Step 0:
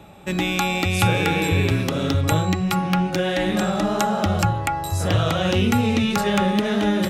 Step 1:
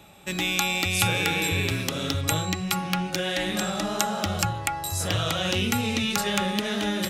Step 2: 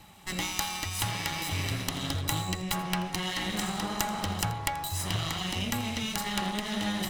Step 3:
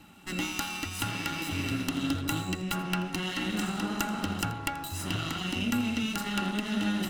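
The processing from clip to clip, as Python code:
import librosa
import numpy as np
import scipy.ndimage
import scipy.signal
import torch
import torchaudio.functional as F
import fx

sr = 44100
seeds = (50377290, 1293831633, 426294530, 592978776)

y1 = fx.high_shelf(x, sr, hz=2000.0, db=12.0)
y1 = F.gain(torch.from_numpy(y1), -8.0).numpy()
y2 = fx.lower_of_two(y1, sr, delay_ms=1.0)
y2 = fx.rider(y2, sr, range_db=4, speed_s=0.5)
y2 = y2 + 10.0 ** (-18.5 / 20.0) * np.pad(y2, (int(83 * sr / 1000.0), 0))[:len(y2)]
y2 = F.gain(torch.from_numpy(y2), -4.0).numpy()
y3 = fx.small_body(y2, sr, hz=(270.0, 1400.0, 2700.0), ring_ms=30, db=14)
y3 = F.gain(torch.from_numpy(y3), -4.5).numpy()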